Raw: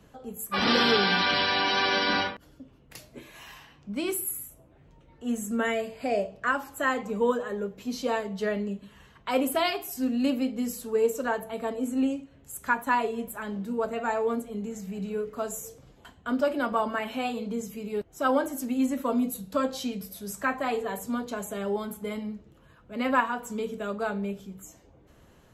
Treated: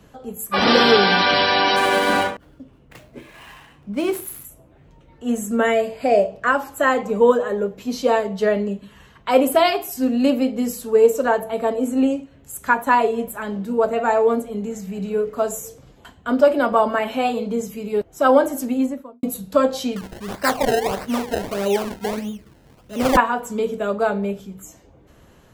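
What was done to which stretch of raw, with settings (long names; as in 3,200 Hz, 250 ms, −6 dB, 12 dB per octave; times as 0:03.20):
0:01.76–0:04.45: running median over 9 samples
0:18.62–0:19.23: fade out and dull
0:19.96–0:23.17: sample-and-hold swept by an LFO 26× 1.6 Hz
whole clip: dynamic equaliser 590 Hz, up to +6 dB, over −40 dBFS, Q 1; level +6 dB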